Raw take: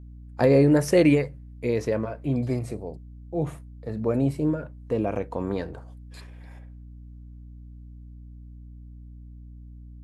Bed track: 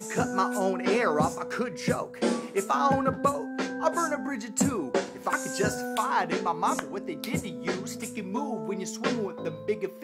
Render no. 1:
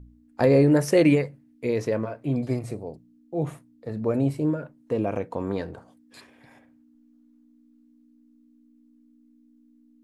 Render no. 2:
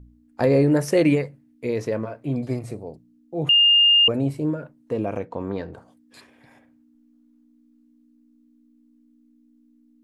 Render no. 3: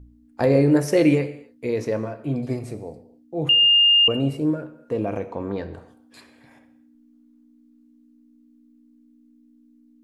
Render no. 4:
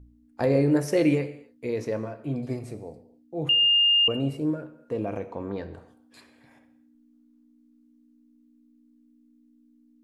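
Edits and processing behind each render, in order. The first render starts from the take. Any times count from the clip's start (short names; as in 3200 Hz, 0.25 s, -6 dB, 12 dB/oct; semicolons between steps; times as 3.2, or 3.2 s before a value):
de-hum 60 Hz, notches 3
3.49–4.08 bleep 2820 Hz -12 dBFS; 5.25–5.73 air absorption 90 m
non-linear reverb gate 0.31 s falling, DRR 10 dB
gain -4.5 dB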